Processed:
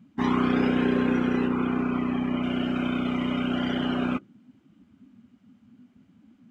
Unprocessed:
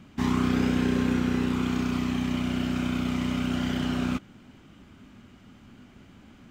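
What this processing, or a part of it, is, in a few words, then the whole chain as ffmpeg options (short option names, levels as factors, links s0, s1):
filter by subtraction: -filter_complex "[0:a]asettb=1/sr,asplit=3[s0][s1][s2];[s0]atrim=end=1.474[s3];[s1]atrim=start=1.47:end=2.43,asetpts=PTS-STARTPTS,afade=t=in:d=0.004:c=qsin,afade=t=out:st=0.956:d=0.004:c=qsin,acrossover=split=2800[s4][s5];[s5]acompressor=threshold=0.00316:ratio=4:attack=1:release=60[s6];[s4][s6]amix=inputs=2:normalize=0[s7];[s2]atrim=start=2.426[s8];[s3][s7]acrossfade=d=0.004:c1=hsin:c2=qsin[s9];[s9][s8]acrossfade=d=0.004:c1=qsin:c2=hsin,afftdn=nr=19:nf=-39,asplit=2[s10][s11];[s11]lowpass=460,volume=-1[s12];[s10][s12]amix=inputs=2:normalize=0,volume=1.5"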